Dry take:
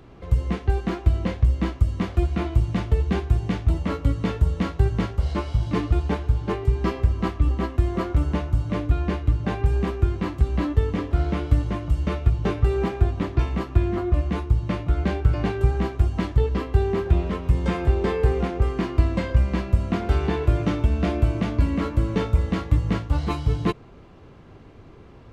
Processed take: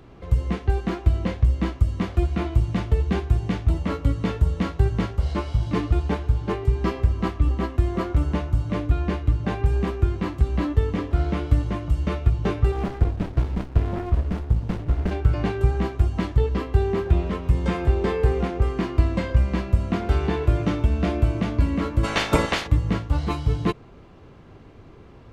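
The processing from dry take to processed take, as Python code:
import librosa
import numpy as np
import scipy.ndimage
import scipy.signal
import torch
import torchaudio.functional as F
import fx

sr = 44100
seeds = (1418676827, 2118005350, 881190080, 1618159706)

y = fx.running_max(x, sr, window=65, at=(12.71, 15.1), fade=0.02)
y = fx.spec_clip(y, sr, under_db=28, at=(22.03, 22.66), fade=0.02)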